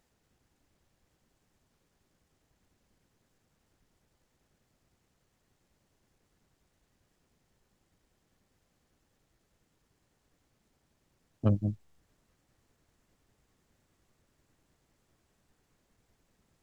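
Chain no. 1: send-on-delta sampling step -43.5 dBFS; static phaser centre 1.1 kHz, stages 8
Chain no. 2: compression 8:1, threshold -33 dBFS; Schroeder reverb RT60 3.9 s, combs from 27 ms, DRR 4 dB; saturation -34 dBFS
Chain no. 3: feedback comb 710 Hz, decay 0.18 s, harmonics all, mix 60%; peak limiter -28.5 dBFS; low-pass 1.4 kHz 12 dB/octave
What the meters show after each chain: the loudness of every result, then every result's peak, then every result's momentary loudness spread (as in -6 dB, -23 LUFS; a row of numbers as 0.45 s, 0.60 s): -35.5 LUFS, -46.0 LUFS, -42.5 LUFS; -18.5 dBFS, -34.0 dBFS, -28.5 dBFS; 11 LU, 22 LU, 8 LU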